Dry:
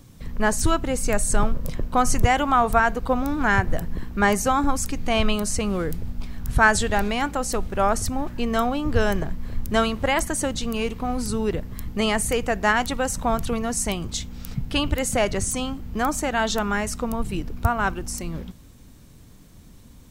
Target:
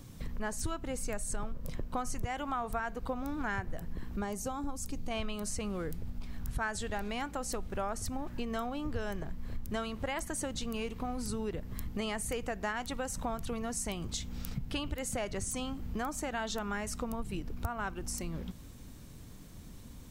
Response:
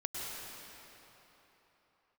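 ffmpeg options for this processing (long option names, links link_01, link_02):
-filter_complex "[0:a]acompressor=threshold=-33dB:ratio=4,asettb=1/sr,asplit=3[link_01][link_02][link_03];[link_01]atrim=end=4.164[link_04];[link_02]atrim=start=4.16:end=5.11,asetpts=PTS-STARTPTS,afade=type=in:duration=0.004:curve=qsin,afade=type=out:start_time=0.946:duration=0.004:curve=qsin,equalizer=frequency=1800:width_type=o:width=1.5:gain=-9[link_05];[link_03]atrim=start=5.106[link_06];[link_04][link_05]acrossfade=duration=0.004:curve1=hsin:curve2=qsin[link_07];[link_07][link_06]acrossfade=duration=0.004:curve1=qsin:curve2=hsin,volume=-1.5dB"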